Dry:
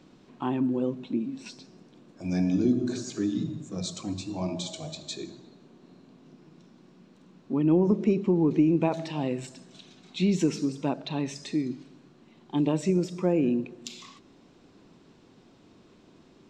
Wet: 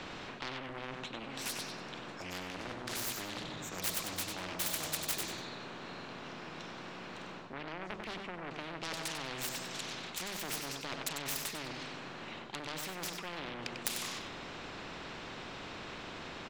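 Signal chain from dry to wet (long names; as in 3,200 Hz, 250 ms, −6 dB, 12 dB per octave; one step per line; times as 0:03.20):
phase distortion by the signal itself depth 0.69 ms
bass and treble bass 0 dB, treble −11 dB
mains-hum notches 50/100/150/200/250 Hz
reversed playback
downward compressor 10 to 1, threshold −35 dBFS, peak gain reduction 17.5 dB
reversed playback
soft clipping −31.5 dBFS, distortion −18 dB
on a send: repeating echo 96 ms, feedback 20%, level −10.5 dB
on the sum: every bin compressed towards the loudest bin 4 to 1
level +15.5 dB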